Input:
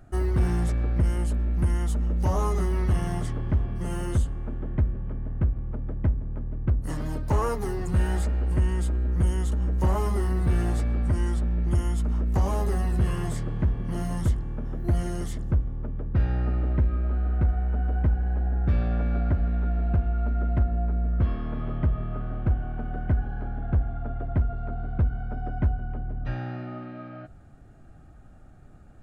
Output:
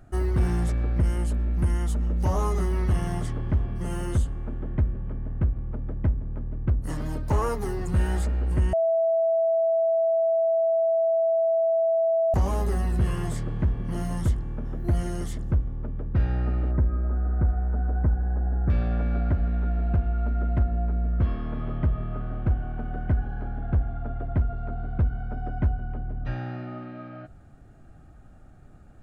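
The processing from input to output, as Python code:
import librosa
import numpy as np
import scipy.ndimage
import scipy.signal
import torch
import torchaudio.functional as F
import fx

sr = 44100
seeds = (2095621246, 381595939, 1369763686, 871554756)

y = fx.lowpass(x, sr, hz=1700.0, slope=24, at=(16.71, 18.7))
y = fx.edit(y, sr, fx.bleep(start_s=8.73, length_s=3.61, hz=658.0, db=-19.0), tone=tone)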